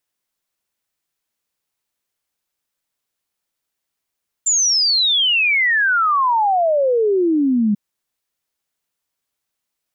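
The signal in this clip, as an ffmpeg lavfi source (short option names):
-f lavfi -i "aevalsrc='0.224*clip(min(t,3.29-t)/0.01,0,1)*sin(2*PI*7300*3.29/log(200/7300)*(exp(log(200/7300)*t/3.29)-1))':d=3.29:s=44100"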